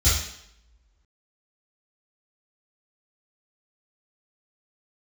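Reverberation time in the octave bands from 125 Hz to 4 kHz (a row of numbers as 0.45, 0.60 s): 0.50, 0.80, 0.80, 0.75, 0.75, 0.70 s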